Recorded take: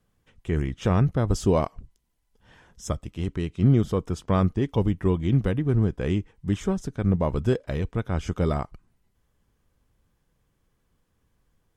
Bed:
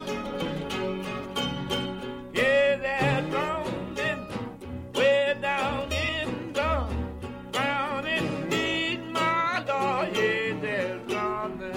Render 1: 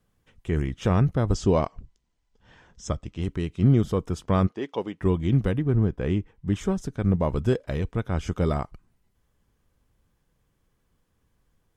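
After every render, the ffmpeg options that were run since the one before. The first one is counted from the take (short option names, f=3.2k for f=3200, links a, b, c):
-filter_complex "[0:a]asettb=1/sr,asplit=3[a][b][c];[a]atrim=end=1.344[d];[b]atrim=start=1.34:end=3.22,asetpts=PTS-STARTPTS,afade=t=in:d=0.004:c=qsin,afade=t=out:st=1.876:d=0.004:c=qsin,lowpass=f=7.4k:w=0.5412,lowpass=f=7.4k:w=1.3066[e];[c]atrim=start=3.216[f];[d][e]acrossfade=d=0.004:c1=hsin:c2=qsin[g];[g][f]acrossfade=d=0.004:c1=qsin:c2=hsin,asplit=3[h][i][j];[h]afade=t=out:st=4.46:d=0.02[k];[i]highpass=390,lowpass=6k,afade=t=in:st=4.46:d=0.02,afade=t=out:st=5:d=0.02[l];[j]afade=t=in:st=5:d=0.02[m];[k][l][m]amix=inputs=3:normalize=0,asettb=1/sr,asplit=3[n][o][p];[n]atrim=end=5.634[q];[o]atrim=start=5.63:end=6.56,asetpts=PTS-STARTPTS,afade=t=in:d=0.004:c=qsin,afade=t=out:st=0.926:d=0.004:c=qsin,highshelf=f=4.6k:g=-10.5[r];[p]atrim=start=6.556[s];[q][r]acrossfade=d=0.004:c1=hsin:c2=qsin[t];[t][s]acrossfade=d=0.004:c1=qsin:c2=hsin"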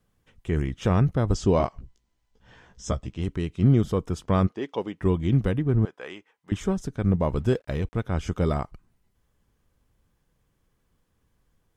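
-filter_complex "[0:a]asettb=1/sr,asplit=3[a][b][c];[a]atrim=end=1.584[d];[b]atrim=start=1.58:end=3.14,asetpts=PTS-STARTPTS,afade=t=in:d=0.004:c=qsin,afade=t=out:st=1.556:d=0.004:c=qsin,asplit=2[e][f];[f]adelay=16,volume=-3.5dB[g];[e][g]amix=inputs=2:normalize=0,atrim=end_sample=68796[h];[c]atrim=start=3.136[i];[d][h]acrossfade=d=0.004:c1=hsin:c2=qsin[j];[j][i]acrossfade=d=0.004:c1=qsin:c2=hsin,asettb=1/sr,asplit=3[k][l][m];[k]atrim=end=5.854[n];[l]atrim=start=5.85:end=6.52,asetpts=PTS-STARTPTS,afade=t=in:d=0.004:c=qsin,afade=t=out:st=0.666:d=0.004:c=qsin,highpass=770[o];[m]atrim=start=6.516[p];[n][o]acrossfade=d=0.004:c1=hsin:c2=qsin[q];[q][p]acrossfade=d=0.004:c1=qsin:c2=hsin,asettb=1/sr,asplit=3[r][s][t];[r]atrim=end=7.394[u];[s]atrim=start=7.39:end=8.04,asetpts=PTS-STARTPTS,afade=t=in:d=0.004:c=qsin,afade=t=out:st=0.646:d=0.004:c=qsin,aeval=exprs='sgn(val(0))*max(abs(val(0))-0.00178,0)':c=same[v];[t]atrim=start=8.036[w];[u][v]acrossfade=d=0.004:c1=hsin:c2=qsin[x];[x][w]acrossfade=d=0.004:c1=qsin:c2=hsin"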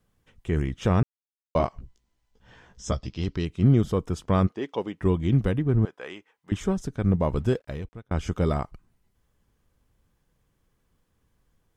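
-filter_complex "[0:a]asettb=1/sr,asplit=3[a][b][c];[a]atrim=end=2.924[d];[b]atrim=start=2.92:end=3.45,asetpts=PTS-STARTPTS,afade=t=in:d=0.004:c=qsin,afade=t=out:st=0.526:d=0.004:c=qsin,lowpass=f=4.9k:t=q:w=5.1[e];[c]atrim=start=3.446[f];[d][e]acrossfade=d=0.004:c1=hsin:c2=qsin[g];[g][f]acrossfade=d=0.004:c1=qsin:c2=hsin,asplit=4[h][i][j][k];[h]atrim=end=1.03,asetpts=PTS-STARTPTS,afade=t=out:st=1.026:d=0.004:c=hsin[l];[i]atrim=start=1.03:end=1.55,asetpts=PTS-STARTPTS,volume=0[m];[j]atrim=start=1.55:end=8.11,asetpts=PTS-STARTPTS,afade=t=in:d=0.004:c=hsin,afade=t=out:st=5.88:d=0.68[n];[k]atrim=start=8.11,asetpts=PTS-STARTPTS,afade=t=in:d=0.004:c=hsin[o];[l][m][n][o]concat=n=4:v=0:a=1"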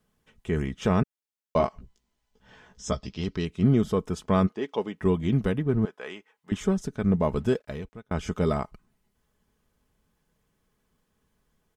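-af "lowshelf=f=74:g=-8.5,aecho=1:1:4.7:0.37"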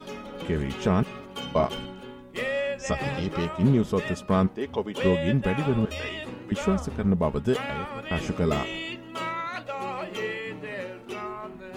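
-filter_complex "[1:a]volume=-6.5dB[a];[0:a][a]amix=inputs=2:normalize=0"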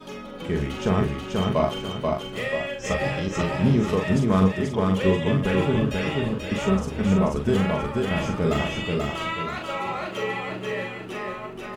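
-filter_complex "[0:a]asplit=2[a][b];[b]adelay=42,volume=-5dB[c];[a][c]amix=inputs=2:normalize=0,asplit=2[d][e];[e]aecho=0:1:485|970|1455|1940|2425:0.708|0.262|0.0969|0.0359|0.0133[f];[d][f]amix=inputs=2:normalize=0"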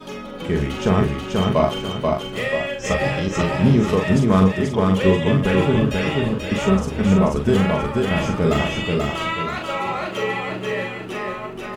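-af "volume=4.5dB,alimiter=limit=-3dB:level=0:latency=1"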